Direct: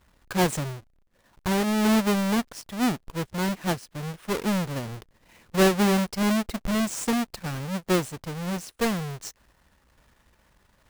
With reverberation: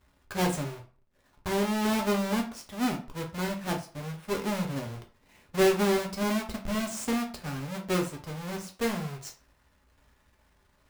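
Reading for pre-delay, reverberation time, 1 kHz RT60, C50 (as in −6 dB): 4 ms, 0.40 s, 0.40 s, 10.5 dB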